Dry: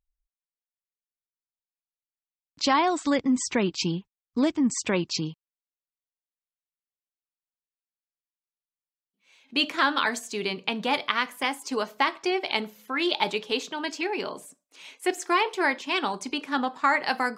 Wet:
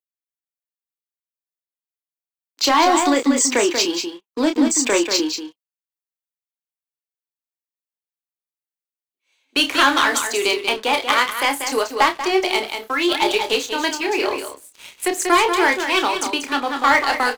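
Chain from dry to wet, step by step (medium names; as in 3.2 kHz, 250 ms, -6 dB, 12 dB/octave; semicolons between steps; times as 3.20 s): steep high-pass 280 Hz 48 dB/octave; treble shelf 9.2 kHz +9.5 dB; band-stop 5.3 kHz, Q 24; waveshaping leveller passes 3; doubling 29 ms -7 dB; delay 188 ms -7.5 dB; random flutter of the level, depth 55%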